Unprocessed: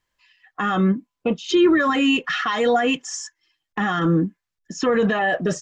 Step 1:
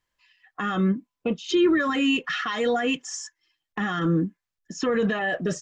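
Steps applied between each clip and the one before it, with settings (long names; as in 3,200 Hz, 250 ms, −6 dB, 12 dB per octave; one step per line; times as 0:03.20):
dynamic equaliser 840 Hz, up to −5 dB, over −33 dBFS, Q 1.5
level −3.5 dB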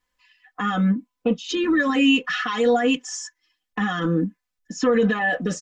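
comb filter 4 ms, depth 93%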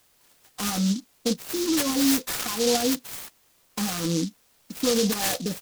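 background noise white −57 dBFS
short delay modulated by noise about 4,800 Hz, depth 0.17 ms
level −4 dB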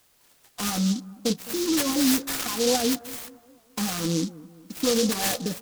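bucket-brigade delay 208 ms, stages 2,048, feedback 50%, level −18.5 dB
wow of a warped record 78 rpm, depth 100 cents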